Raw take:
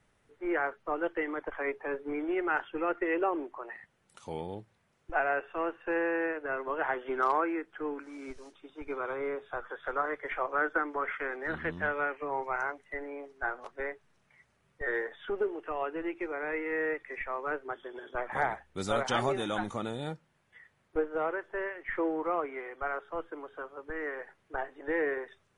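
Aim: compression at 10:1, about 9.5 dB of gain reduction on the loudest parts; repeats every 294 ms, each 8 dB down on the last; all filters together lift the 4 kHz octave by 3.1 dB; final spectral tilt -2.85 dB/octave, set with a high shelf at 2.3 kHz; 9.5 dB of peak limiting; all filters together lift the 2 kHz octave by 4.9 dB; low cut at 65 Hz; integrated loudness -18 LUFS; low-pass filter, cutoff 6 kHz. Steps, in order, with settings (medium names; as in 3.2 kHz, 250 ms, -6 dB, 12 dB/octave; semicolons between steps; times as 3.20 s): high-pass 65 Hz; low-pass 6 kHz; peaking EQ 2 kHz +7.5 dB; treble shelf 2.3 kHz -4 dB; peaking EQ 4 kHz +5 dB; compression 10:1, threshold -31 dBFS; peak limiter -29 dBFS; feedback delay 294 ms, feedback 40%, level -8 dB; trim +20.5 dB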